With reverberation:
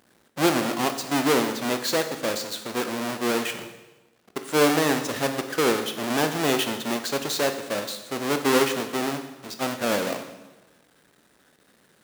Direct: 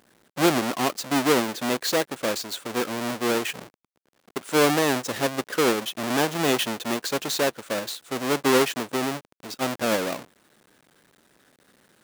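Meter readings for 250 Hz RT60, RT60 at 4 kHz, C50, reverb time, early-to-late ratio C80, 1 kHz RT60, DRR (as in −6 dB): 1.2 s, 1.0 s, 9.0 dB, 1.1 s, 11.0 dB, 1.1 s, 7.0 dB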